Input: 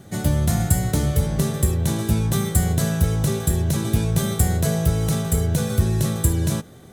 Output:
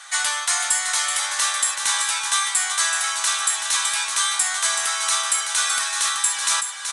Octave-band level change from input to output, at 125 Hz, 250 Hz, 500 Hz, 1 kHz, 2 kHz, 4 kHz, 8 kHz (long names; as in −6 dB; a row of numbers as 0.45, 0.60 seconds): below −40 dB, below −35 dB, −15.5 dB, +7.5 dB, +12.5 dB, +12.5 dB, +10.5 dB